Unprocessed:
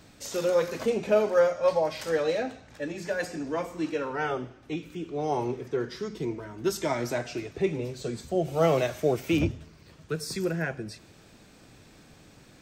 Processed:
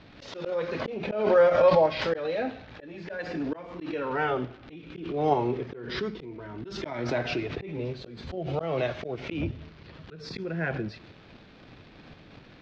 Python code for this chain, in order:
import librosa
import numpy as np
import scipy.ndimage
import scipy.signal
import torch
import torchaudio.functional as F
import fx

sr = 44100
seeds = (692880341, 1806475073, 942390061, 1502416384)

p1 = fx.dmg_crackle(x, sr, seeds[0], per_s=190.0, level_db=-41.0)
p2 = fx.auto_swell(p1, sr, attack_ms=358.0)
p3 = fx.level_steps(p2, sr, step_db=13)
p4 = p2 + F.gain(torch.from_numpy(p3), -0.5).numpy()
p5 = scipy.signal.sosfilt(scipy.signal.cheby2(4, 50, 9300.0, 'lowpass', fs=sr, output='sos'), p4)
y = fx.pre_swell(p5, sr, db_per_s=57.0)